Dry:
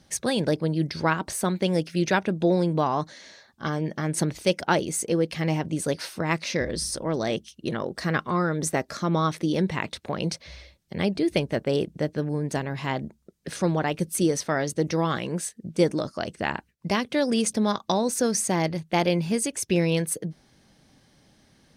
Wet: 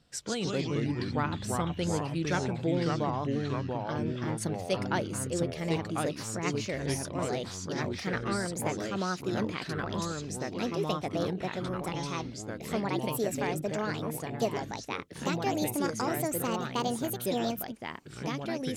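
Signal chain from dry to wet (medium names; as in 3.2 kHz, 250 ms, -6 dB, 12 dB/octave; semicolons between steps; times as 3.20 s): gliding tape speed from 88% -> 144%; ever faster or slower copies 117 ms, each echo -3 st, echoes 3; trim -8.5 dB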